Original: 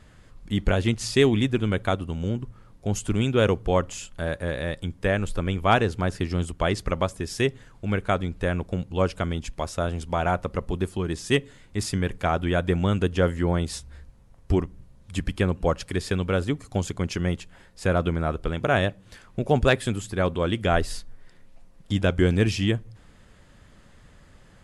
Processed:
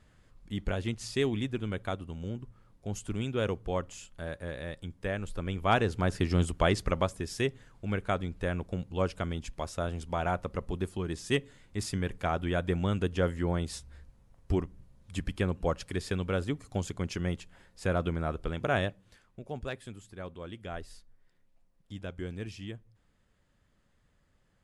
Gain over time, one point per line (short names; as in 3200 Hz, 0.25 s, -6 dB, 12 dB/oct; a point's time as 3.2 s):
5.25 s -10 dB
6.41 s 0 dB
7.45 s -6.5 dB
18.8 s -6.5 dB
19.4 s -18 dB